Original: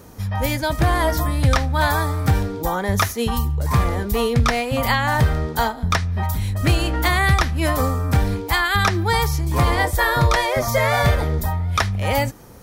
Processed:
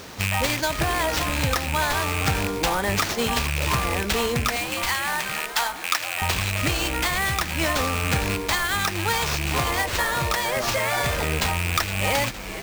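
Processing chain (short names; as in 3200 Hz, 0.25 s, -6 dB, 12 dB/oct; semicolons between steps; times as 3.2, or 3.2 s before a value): rattling part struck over -22 dBFS, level -18 dBFS; tilt +2 dB/oct; compressor, threshold -22 dBFS, peak gain reduction 9.5 dB; sample-rate reducer 11000 Hz, jitter 20%; vocal rider within 4 dB 0.5 s; 4.56–6.22 HPF 860 Hz 12 dB/oct; frequency-shifting echo 0.463 s, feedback 52%, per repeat -140 Hz, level -12 dB; gain +2 dB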